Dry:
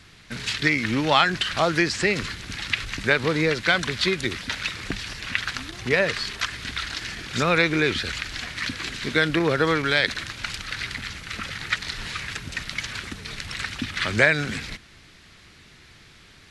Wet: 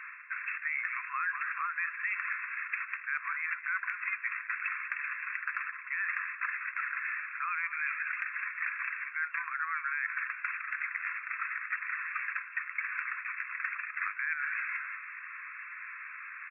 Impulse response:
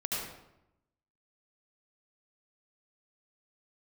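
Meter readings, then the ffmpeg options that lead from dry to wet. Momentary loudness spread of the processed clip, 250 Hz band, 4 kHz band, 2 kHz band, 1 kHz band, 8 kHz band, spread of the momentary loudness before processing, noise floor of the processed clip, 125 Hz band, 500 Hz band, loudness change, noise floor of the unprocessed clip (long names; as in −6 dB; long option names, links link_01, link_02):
5 LU, below −40 dB, below −40 dB, −6.5 dB, −9.0 dB, below −40 dB, 12 LU, −46 dBFS, below −40 dB, below −40 dB, −10.0 dB, −51 dBFS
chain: -filter_complex "[0:a]acontrast=24,asplit=2[link_01][link_02];[link_02]asplit=3[link_03][link_04][link_05];[link_03]adelay=195,afreqshift=-51,volume=-16dB[link_06];[link_04]adelay=390,afreqshift=-102,volume=-25.6dB[link_07];[link_05]adelay=585,afreqshift=-153,volume=-35.3dB[link_08];[link_06][link_07][link_08]amix=inputs=3:normalize=0[link_09];[link_01][link_09]amix=inputs=2:normalize=0,afftfilt=real='re*between(b*sr/4096,1000,2700)':imag='im*between(b*sr/4096,1000,2700)':win_size=4096:overlap=0.75,alimiter=limit=-10.5dB:level=0:latency=1:release=112,equalizer=frequency=1600:width_type=o:width=1.3:gain=8,areverse,acompressor=threshold=-35dB:ratio=4,areverse"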